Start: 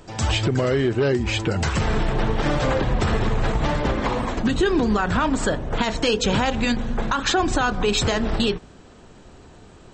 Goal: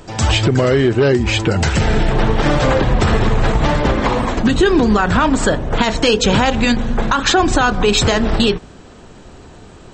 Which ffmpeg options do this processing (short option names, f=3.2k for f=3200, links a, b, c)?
-filter_complex "[0:a]asettb=1/sr,asplit=3[a][b][c];[a]atrim=end=1.644[d];[b]atrim=start=1.64:end=2.11,asetpts=PTS-STARTPTS,afade=t=in:d=0.004:c=qsin,afade=t=out:st=0.466:d=0.004:c=qsin,equalizer=f=1.1k:w=7.3:g=-13[e];[c]atrim=start=2.106[f];[d][e]acrossfade=d=0.004:c1=hsin:c2=qsin[g];[g][f]acrossfade=d=0.004:c1=qsin:c2=hsin,volume=7dB"